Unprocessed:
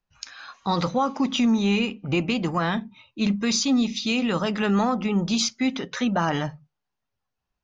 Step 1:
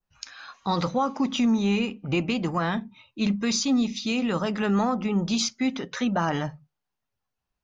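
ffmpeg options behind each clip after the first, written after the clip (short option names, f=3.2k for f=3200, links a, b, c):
-af "adynamicequalizer=threshold=0.00891:dfrequency=3300:dqfactor=1:tfrequency=3300:tqfactor=1:attack=5:release=100:ratio=0.375:range=2:mode=cutabove:tftype=bell,volume=-1.5dB"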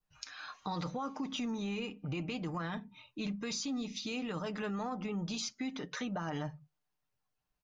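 -af "aecho=1:1:6.6:0.41,alimiter=limit=-18.5dB:level=0:latency=1:release=13,acompressor=threshold=-38dB:ratio=2,volume=-3dB"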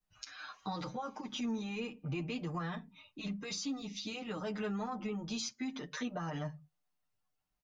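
-filter_complex "[0:a]asplit=2[a][b];[b]adelay=7.6,afreqshift=0.27[c];[a][c]amix=inputs=2:normalize=1,volume=1.5dB"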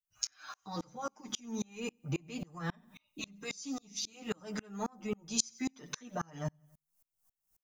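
-af "aexciter=amount=6.3:drive=2.3:freq=5.5k,aecho=1:1:92|184|276:0.1|0.04|0.016,aeval=exprs='val(0)*pow(10,-34*if(lt(mod(-3.7*n/s,1),2*abs(-3.7)/1000),1-mod(-3.7*n/s,1)/(2*abs(-3.7)/1000),(mod(-3.7*n/s,1)-2*abs(-3.7)/1000)/(1-2*abs(-3.7)/1000))/20)':c=same,volume=7.5dB"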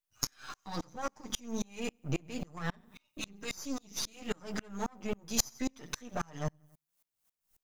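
-af "aeval=exprs='if(lt(val(0),0),0.251*val(0),val(0))':c=same,volume=5dB"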